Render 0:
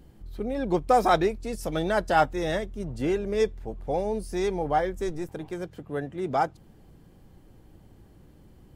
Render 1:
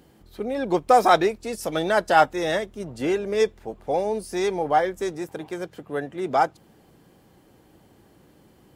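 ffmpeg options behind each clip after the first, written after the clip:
-af "highpass=f=360:p=1,volume=5.5dB"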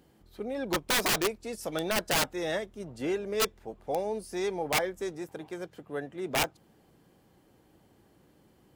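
-af "aeval=exprs='(mod(4.73*val(0)+1,2)-1)/4.73':c=same,volume=-7dB"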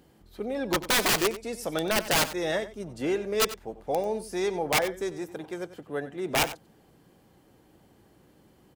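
-af "aecho=1:1:93:0.188,volume=3dB"

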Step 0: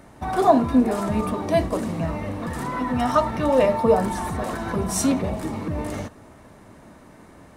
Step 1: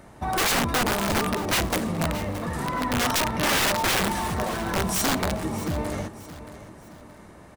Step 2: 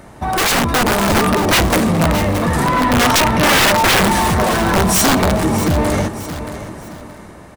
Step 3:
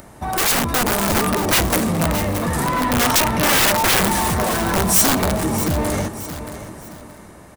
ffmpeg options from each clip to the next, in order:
-af "equalizer=f=270:w=7.2:g=-5.5,aeval=exprs='(mod(7.5*val(0)+1,2)-1)/7.5':c=same,aecho=1:1:622|1244|1866:0.188|0.0659|0.0231"
-af "dynaudnorm=f=400:g=5:m=7dB,asoftclip=type=tanh:threshold=-18dB,volume=8.5dB"
-filter_complex "[0:a]acrossover=split=3700[a][b];[b]crystalizer=i=1:c=0[c];[a][c]amix=inputs=2:normalize=0,acompressor=mode=upward:threshold=-34dB:ratio=2.5,volume=-5dB"

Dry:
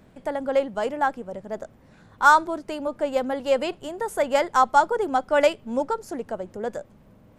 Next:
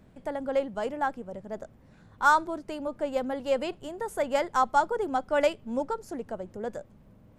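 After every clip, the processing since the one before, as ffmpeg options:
-af "lowshelf=f=220:g=6,volume=-6dB"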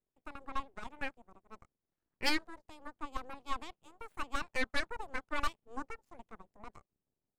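-af "aeval=exprs='abs(val(0))':c=same,aeval=exprs='0.335*(cos(1*acos(clip(val(0)/0.335,-1,1)))-cos(1*PI/2))+0.106*(cos(3*acos(clip(val(0)/0.335,-1,1)))-cos(3*PI/2))+0.133*(cos(4*acos(clip(val(0)/0.335,-1,1)))-cos(4*PI/2))+0.00266*(cos(7*acos(clip(val(0)/0.335,-1,1)))-cos(7*PI/2))':c=same,volume=-5dB"

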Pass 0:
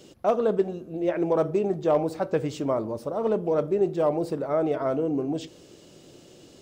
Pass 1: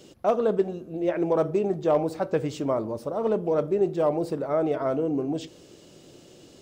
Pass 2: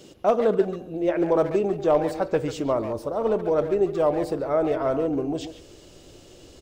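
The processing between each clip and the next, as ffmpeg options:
-af anull
-filter_complex "[0:a]asubboost=boost=9:cutoff=57,asplit=2[a][b];[b]adelay=140,highpass=300,lowpass=3.4k,asoftclip=type=hard:threshold=-22.5dB,volume=-9dB[c];[a][c]amix=inputs=2:normalize=0,volume=2.5dB"

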